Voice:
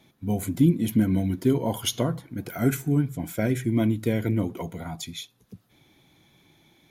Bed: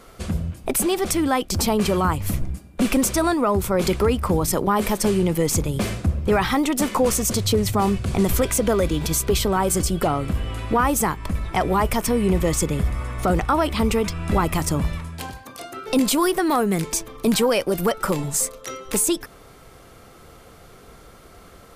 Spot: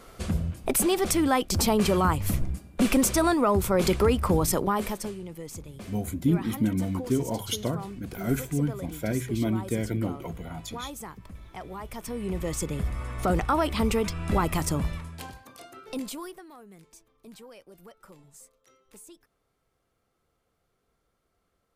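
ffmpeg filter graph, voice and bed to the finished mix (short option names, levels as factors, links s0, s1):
-filter_complex "[0:a]adelay=5650,volume=0.631[s0];[1:a]volume=3.98,afade=t=out:st=4.45:d=0.71:silence=0.149624,afade=t=in:st=11.84:d=1.48:silence=0.188365,afade=t=out:st=14.65:d=1.82:silence=0.0595662[s1];[s0][s1]amix=inputs=2:normalize=0"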